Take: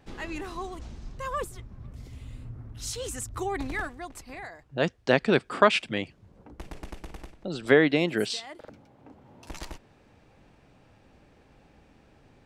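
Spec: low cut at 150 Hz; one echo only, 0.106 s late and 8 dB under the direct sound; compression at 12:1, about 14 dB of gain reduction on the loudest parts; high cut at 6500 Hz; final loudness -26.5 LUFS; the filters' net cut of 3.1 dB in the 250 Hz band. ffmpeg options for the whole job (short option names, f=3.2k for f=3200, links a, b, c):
-af "highpass=150,lowpass=6.5k,equalizer=f=250:t=o:g=-3.5,acompressor=threshold=-28dB:ratio=12,aecho=1:1:106:0.398,volume=10dB"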